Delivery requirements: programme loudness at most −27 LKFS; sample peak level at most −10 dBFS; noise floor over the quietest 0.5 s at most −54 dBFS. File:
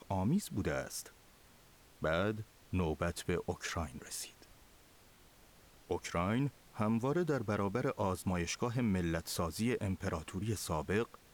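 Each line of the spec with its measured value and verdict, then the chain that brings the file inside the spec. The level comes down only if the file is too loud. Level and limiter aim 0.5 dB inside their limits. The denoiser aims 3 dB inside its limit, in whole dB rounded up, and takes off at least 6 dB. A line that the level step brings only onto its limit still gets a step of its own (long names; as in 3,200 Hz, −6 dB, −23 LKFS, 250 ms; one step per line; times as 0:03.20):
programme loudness −36.5 LKFS: in spec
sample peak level −20.5 dBFS: in spec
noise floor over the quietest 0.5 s −62 dBFS: in spec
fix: no processing needed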